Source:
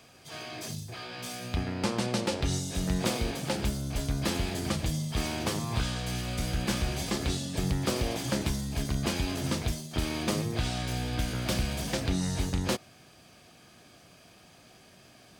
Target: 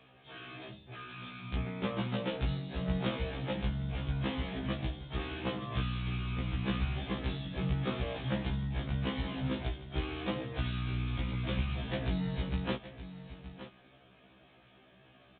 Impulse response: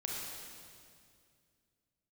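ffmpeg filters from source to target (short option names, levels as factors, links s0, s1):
-filter_complex "[0:a]asplit=2[s0][s1];[s1]aecho=0:1:920:0.224[s2];[s0][s2]amix=inputs=2:normalize=0,aresample=8000,aresample=44100,afftfilt=real='re*1.73*eq(mod(b,3),0)':imag='im*1.73*eq(mod(b,3),0)':win_size=2048:overlap=0.75,volume=0.794"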